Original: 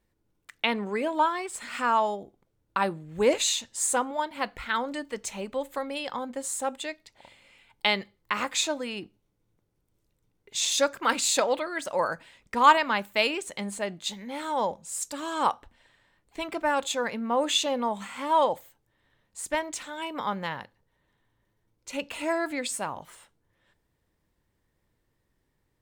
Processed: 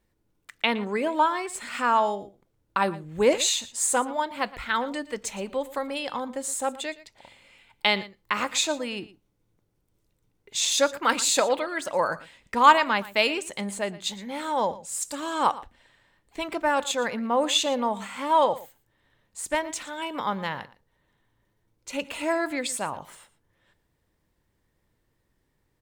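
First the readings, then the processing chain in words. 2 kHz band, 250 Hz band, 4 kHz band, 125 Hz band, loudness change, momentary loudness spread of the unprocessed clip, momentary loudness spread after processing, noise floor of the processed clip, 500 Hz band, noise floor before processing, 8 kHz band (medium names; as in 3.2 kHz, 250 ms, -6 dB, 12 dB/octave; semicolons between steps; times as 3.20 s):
+2.0 dB, +2.0 dB, +2.0 dB, +2.0 dB, +2.0 dB, 12 LU, 12 LU, -73 dBFS, +2.0 dB, -75 dBFS, +2.0 dB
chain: delay 116 ms -18 dB; trim +2 dB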